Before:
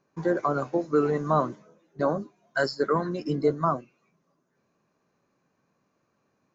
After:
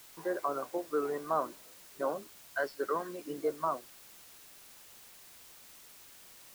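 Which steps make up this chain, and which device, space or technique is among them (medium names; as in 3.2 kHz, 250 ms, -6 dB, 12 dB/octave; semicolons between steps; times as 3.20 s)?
wax cylinder (band-pass 390–2500 Hz; wow and flutter; white noise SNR 17 dB); trim -6.5 dB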